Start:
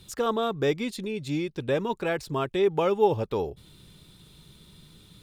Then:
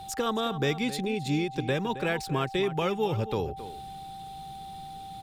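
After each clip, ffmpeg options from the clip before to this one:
-filter_complex "[0:a]acrossover=split=220|1400[a][b][c];[b]acompressor=threshold=-32dB:ratio=6[d];[a][d][c]amix=inputs=3:normalize=0,aeval=exprs='val(0)+0.00708*sin(2*PI*780*n/s)':c=same,asplit=2[e][f];[f]adelay=268.2,volume=-13dB,highshelf=f=4k:g=-6.04[g];[e][g]amix=inputs=2:normalize=0,volume=3dB"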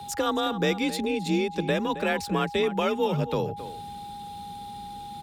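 -af "afreqshift=37,volume=2.5dB"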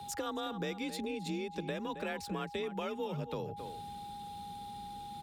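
-af "acompressor=threshold=-30dB:ratio=3,volume=-6dB"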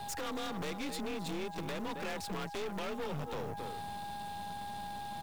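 -af "acrusher=bits=5:mode=log:mix=0:aa=0.000001,aeval=exprs='0.0562*sin(PI/2*2.51*val(0)/0.0562)':c=same,aeval=exprs='(tanh(31.6*val(0)+0.75)-tanh(0.75))/31.6':c=same,volume=-4.5dB"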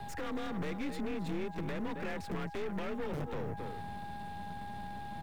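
-filter_complex "[0:a]equalizer=f=1.9k:t=o:w=1.2:g=9.5,acrossover=split=260|1800|5300[a][b][c][d];[a]aeval=exprs='(mod(47.3*val(0)+1,2)-1)/47.3':c=same[e];[e][b][c][d]amix=inputs=4:normalize=0,tiltshelf=f=700:g=7.5,volume=-3dB"

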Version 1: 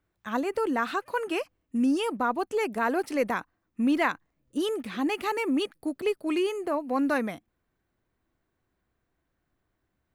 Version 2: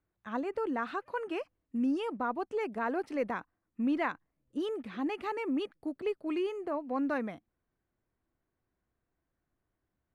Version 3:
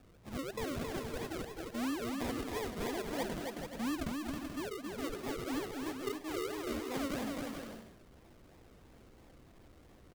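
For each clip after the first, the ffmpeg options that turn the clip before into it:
-af "aemphasis=mode=reproduction:type=75fm,volume=-6.5dB"
-af "aeval=exprs='val(0)+0.5*0.00447*sgn(val(0))':c=same,acrusher=samples=42:mix=1:aa=0.000001:lfo=1:lforange=25.2:lforate=3,aecho=1:1:270|432|529.2|587.5|622.5:0.631|0.398|0.251|0.158|0.1,volume=-7dB"

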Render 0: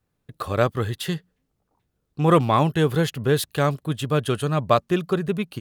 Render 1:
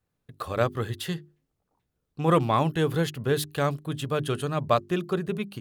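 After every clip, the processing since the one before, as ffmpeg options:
-af "bandreject=f=50:t=h:w=6,bandreject=f=100:t=h:w=6,bandreject=f=150:t=h:w=6,bandreject=f=200:t=h:w=6,bandreject=f=250:t=h:w=6,bandreject=f=300:t=h:w=6,bandreject=f=350:t=h:w=6,bandreject=f=400:t=h:w=6,volume=-4dB"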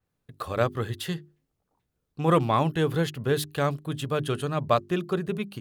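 -af "adynamicequalizer=threshold=0.00631:dfrequency=5200:dqfactor=0.7:tfrequency=5200:tqfactor=0.7:attack=5:release=100:ratio=0.375:range=1.5:mode=cutabove:tftype=highshelf"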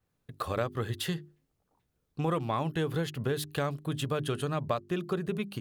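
-af "acompressor=threshold=-29dB:ratio=4,volume=1dB"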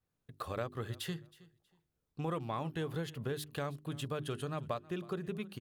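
-af "aecho=1:1:319|638:0.0891|0.0196,volume=-7dB"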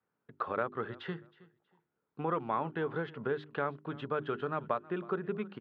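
-af "highpass=200,equalizer=f=210:t=q:w=4:g=3,equalizer=f=420:t=q:w=4:g=4,equalizer=f=920:t=q:w=4:g=6,equalizer=f=1.4k:t=q:w=4:g=8,equalizer=f=2.7k:t=q:w=4:g=-4,lowpass=f=2.8k:w=0.5412,lowpass=f=2.8k:w=1.3066,volume=2.5dB"

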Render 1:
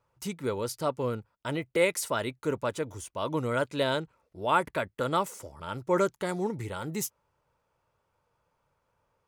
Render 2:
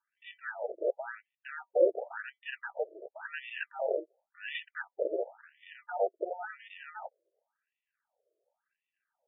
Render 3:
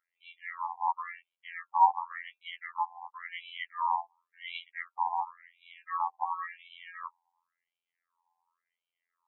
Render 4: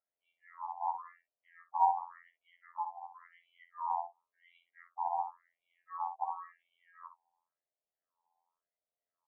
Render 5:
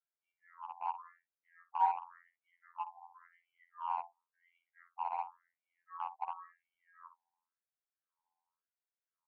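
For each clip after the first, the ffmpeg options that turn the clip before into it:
-af "acrusher=samples=41:mix=1:aa=0.000001,lowpass=3.7k,afftfilt=real='re*between(b*sr/1024,460*pow(2600/460,0.5+0.5*sin(2*PI*0.93*pts/sr))/1.41,460*pow(2600/460,0.5+0.5*sin(2*PI*0.93*pts/sr))*1.41)':imag='im*between(b*sr/1024,460*pow(2600/460,0.5+0.5*sin(2*PI*0.93*pts/sr))/1.41,460*pow(2600/460,0.5+0.5*sin(2*PI*0.93*pts/sr))*1.41)':win_size=1024:overlap=0.75,volume=1.5dB"
-af "afreqshift=400,afftfilt=real='hypot(re,im)*cos(PI*b)':imag='0':win_size=2048:overlap=0.75,highshelf=f=2.9k:g=-11.5,volume=6.5dB"
-filter_complex "[0:a]lowpass=f=660:t=q:w=4.9,asplit=2[a][b];[b]aecho=0:1:11|58:0.447|0.299[c];[a][c]amix=inputs=2:normalize=0,volume=-4dB"
-filter_complex "[0:a]asplit=2[a][b];[b]acrusher=bits=4:mix=0:aa=0.5,volume=-4dB[c];[a][c]amix=inputs=2:normalize=0,highpass=f=450:w=0.5412,highpass=f=450:w=1.3066,equalizer=f=610:t=q:w=4:g=-9,equalizer=f=1k:t=q:w=4:g=3,equalizer=f=1.5k:t=q:w=4:g=10,lowpass=f=2.5k:w=0.5412,lowpass=f=2.5k:w=1.3066,volume=-8dB"

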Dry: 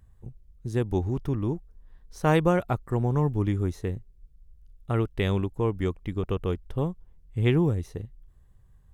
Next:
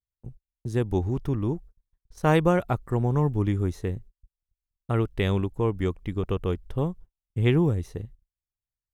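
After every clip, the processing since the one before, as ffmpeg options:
-af "agate=range=-41dB:threshold=-43dB:ratio=16:detection=peak,volume=1dB"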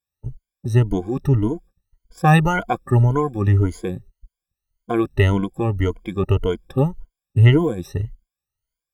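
-af "afftfilt=real='re*pow(10,24/40*sin(2*PI*(1.8*log(max(b,1)*sr/1024/100)/log(2)-(1.8)*(pts-256)/sr)))':imag='im*pow(10,24/40*sin(2*PI*(1.8*log(max(b,1)*sr/1024/100)/log(2)-(1.8)*(pts-256)/sr)))':win_size=1024:overlap=0.75,volume=1.5dB"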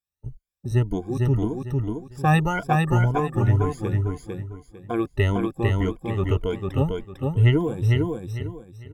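-af "aecho=1:1:451|902|1353|1804:0.708|0.191|0.0516|0.0139,volume=-5dB"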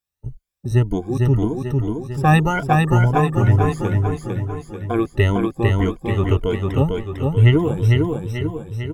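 -af "aecho=1:1:889|1778:0.316|0.0506,volume=4.5dB"

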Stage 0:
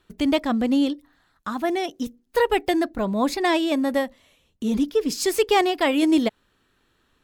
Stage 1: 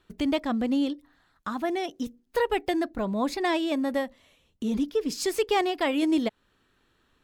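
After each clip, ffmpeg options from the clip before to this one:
-filter_complex "[0:a]highshelf=f=7.6k:g=-4.5,asplit=2[a][b];[b]acompressor=threshold=-29dB:ratio=6,volume=-1dB[c];[a][c]amix=inputs=2:normalize=0,volume=-7dB"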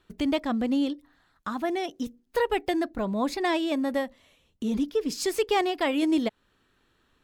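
-af anull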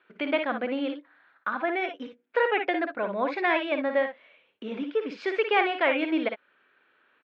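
-af "highpass=380,equalizer=f=550:t=q:w=4:g=5,equalizer=f=1.5k:t=q:w=4:g=9,equalizer=f=2.3k:t=q:w=4:g=8,lowpass=f=3.1k:w=0.5412,lowpass=f=3.1k:w=1.3066,aecho=1:1:56|66:0.422|0.224"

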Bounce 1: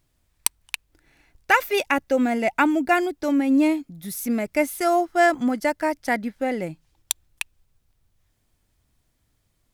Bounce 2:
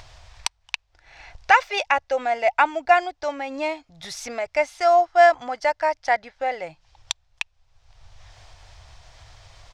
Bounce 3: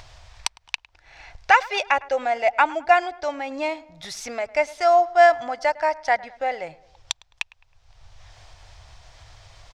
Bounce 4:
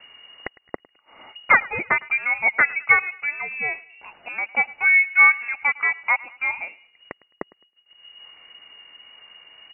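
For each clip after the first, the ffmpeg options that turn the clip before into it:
-af "firequalizer=gain_entry='entry(110,0);entry(200,-22);entry(500,-1);entry(720,8);entry(1300,3);entry(5500,4);entry(12000,-27)':delay=0.05:min_phase=1,acompressor=mode=upward:threshold=-25dB:ratio=2.5,volume=-2dB"
-filter_complex "[0:a]asplit=2[a][b];[b]adelay=106,lowpass=f=2.1k:p=1,volume=-20dB,asplit=2[c][d];[d]adelay=106,lowpass=f=2.1k:p=1,volume=0.51,asplit=2[e][f];[f]adelay=106,lowpass=f=2.1k:p=1,volume=0.51,asplit=2[g][h];[h]adelay=106,lowpass=f=2.1k:p=1,volume=0.51[i];[a][c][e][g][i]amix=inputs=5:normalize=0"
-af "agate=range=-33dB:threshold=-48dB:ratio=3:detection=peak,lowpass=f=2.5k:t=q:w=0.5098,lowpass=f=2.5k:t=q:w=0.6013,lowpass=f=2.5k:t=q:w=0.9,lowpass=f=2.5k:t=q:w=2.563,afreqshift=-2900"

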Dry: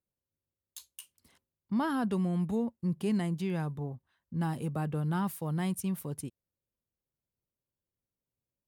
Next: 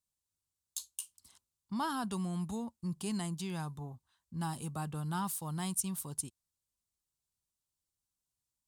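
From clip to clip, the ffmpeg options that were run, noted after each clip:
-af "equalizer=f=125:t=o:w=1:g=-5,equalizer=f=250:t=o:w=1:g=-5,equalizer=f=500:t=o:w=1:g=-11,equalizer=f=1k:t=o:w=1:g=4,equalizer=f=2k:t=o:w=1:g=-8,equalizer=f=4k:t=o:w=1:g=4,equalizer=f=8k:t=o:w=1:g=10"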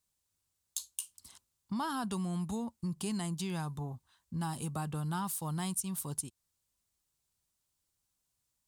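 -af "acompressor=threshold=-42dB:ratio=2.5,volume=6.5dB"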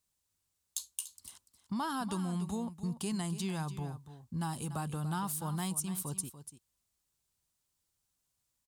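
-af "aecho=1:1:290:0.237"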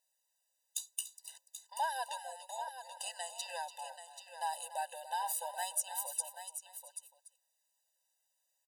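-af "aphaser=in_gain=1:out_gain=1:delay=2.6:decay=0.24:speed=0.67:type=triangular,aecho=1:1:783:0.316,afftfilt=real='re*eq(mod(floor(b*sr/1024/510),2),1)':imag='im*eq(mod(floor(b*sr/1024/510),2),1)':win_size=1024:overlap=0.75,volume=3.5dB"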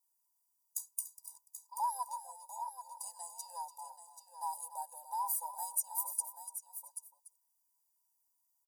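-af "firequalizer=gain_entry='entry(200,0);entry(640,-10);entry(1000,11);entry(1500,-21);entry(2300,-28);entry(3300,-27);entry(4900,0);entry(8000,3);entry(12000,11)':delay=0.05:min_phase=1,volume=-5.5dB"

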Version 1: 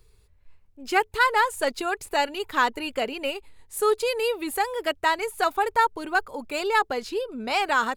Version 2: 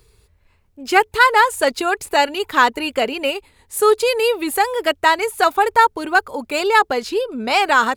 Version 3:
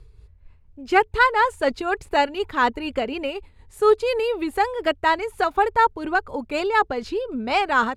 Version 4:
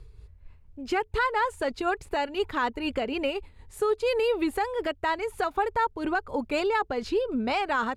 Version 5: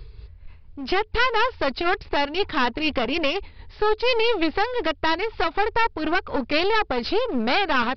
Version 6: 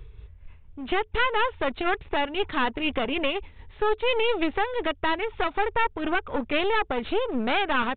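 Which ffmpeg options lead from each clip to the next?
-af "highpass=f=58:p=1,volume=8dB"
-af "aemphasis=mode=reproduction:type=bsi,tremolo=f=4.1:d=0.44,volume=-3.5dB"
-af "alimiter=limit=-17.5dB:level=0:latency=1:release=214"
-af "highshelf=f=2.2k:g=7.5,aresample=11025,aeval=exprs='clip(val(0),-1,0.0126)':c=same,aresample=44100,volume=7dB"
-af "aresample=8000,aresample=44100,volume=-3dB"

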